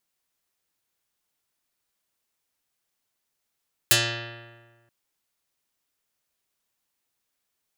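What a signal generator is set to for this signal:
Karplus-Strong string A#2, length 0.98 s, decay 1.49 s, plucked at 0.45, dark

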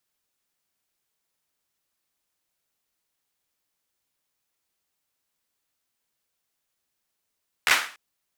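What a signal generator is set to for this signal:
synth clap length 0.29 s, apart 13 ms, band 1,700 Hz, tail 0.41 s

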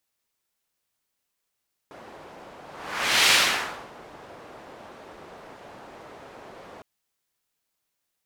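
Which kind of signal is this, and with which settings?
pass-by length 4.91 s, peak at 0:01.39, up 0.68 s, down 0.67 s, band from 670 Hz, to 3,200 Hz, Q 0.88, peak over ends 27 dB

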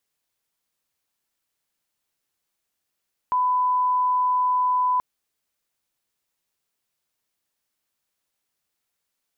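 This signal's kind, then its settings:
line-up tone −18 dBFS 1.68 s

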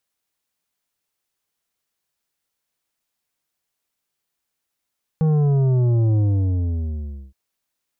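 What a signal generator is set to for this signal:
bass drop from 160 Hz, over 2.12 s, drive 9 dB, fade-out 1.16 s, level −15.5 dB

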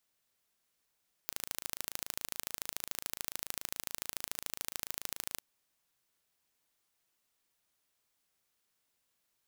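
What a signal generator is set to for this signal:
impulse train 27.1 per second, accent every 2, −8 dBFS 4.10 s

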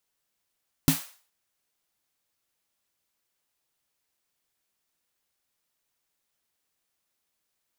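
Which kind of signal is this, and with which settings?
synth snare length 0.42 s, tones 160 Hz, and 270 Hz, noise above 600 Hz, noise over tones −7.5 dB, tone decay 0.15 s, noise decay 0.43 s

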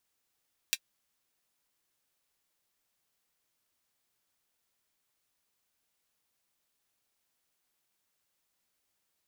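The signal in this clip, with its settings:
closed synth hi-hat, high-pass 2,600 Hz, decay 0.06 s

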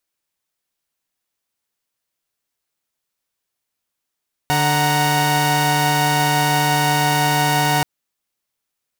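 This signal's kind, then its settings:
held notes D3/F#5/A#5 saw, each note −17 dBFS 3.33 s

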